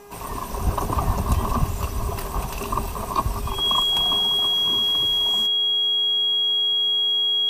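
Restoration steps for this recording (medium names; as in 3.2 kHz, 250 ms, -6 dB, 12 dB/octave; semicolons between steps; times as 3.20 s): de-hum 407.8 Hz, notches 6; band-stop 3.3 kHz, Q 30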